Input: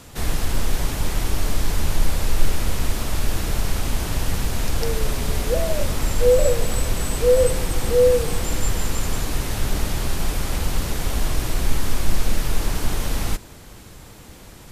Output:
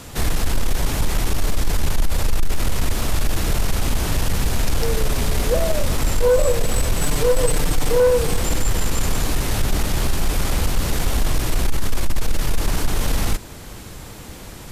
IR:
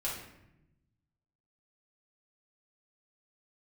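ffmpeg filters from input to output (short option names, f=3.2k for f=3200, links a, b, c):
-filter_complex "[0:a]asettb=1/sr,asplit=3[a][b][c];[a]atrim=end=7.014[d];[b]atrim=start=7.01:end=8,asetpts=PTS-STARTPTS,afade=t=in:d=0.004:c=qsin,afade=t=out:st=0.986:d=0.004:c=qsin,aecho=1:1:6.8:0.72,atrim=end_sample=43659[e];[c]atrim=start=7.996[f];[d][e]acrossfade=d=0.004:c1=hsin:c2=qsin[g];[g][f]acrossfade=d=0.004:c1=qsin:c2=hsin,asplit=2[h][i];[i]alimiter=limit=-14.5dB:level=0:latency=1:release=321,volume=0dB[j];[h][j]amix=inputs=2:normalize=0,asoftclip=type=tanh:threshold=-9.5dB"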